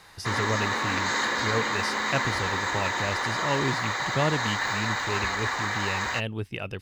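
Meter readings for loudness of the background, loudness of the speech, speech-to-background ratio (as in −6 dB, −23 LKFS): −27.0 LKFS, −32.0 LKFS, −5.0 dB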